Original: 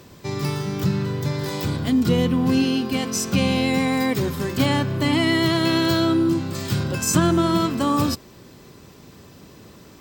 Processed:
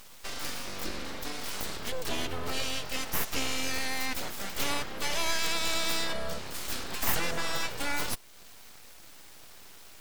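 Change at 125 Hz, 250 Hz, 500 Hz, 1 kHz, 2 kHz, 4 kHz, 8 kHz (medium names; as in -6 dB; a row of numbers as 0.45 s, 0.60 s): -22.0 dB, -22.5 dB, -14.0 dB, -9.5 dB, -5.5 dB, -5.0 dB, -5.5 dB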